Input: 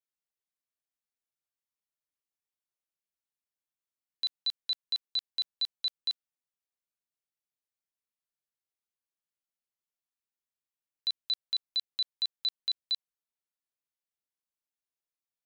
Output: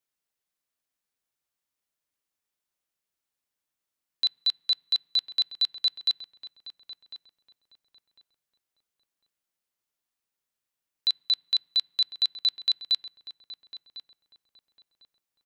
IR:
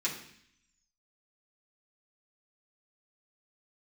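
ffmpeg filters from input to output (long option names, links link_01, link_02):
-filter_complex "[0:a]asplit=2[link_01][link_02];[link_02]adelay=1051,lowpass=frequency=1900:poles=1,volume=-11dB,asplit=2[link_03][link_04];[link_04]adelay=1051,lowpass=frequency=1900:poles=1,volume=0.31,asplit=2[link_05][link_06];[link_06]adelay=1051,lowpass=frequency=1900:poles=1,volume=0.31[link_07];[link_01][link_03][link_05][link_07]amix=inputs=4:normalize=0,asplit=2[link_08][link_09];[1:a]atrim=start_sample=2205,asetrate=35280,aresample=44100,lowpass=2400[link_10];[link_09][link_10]afir=irnorm=-1:irlink=0,volume=-27dB[link_11];[link_08][link_11]amix=inputs=2:normalize=0,volume=6.5dB"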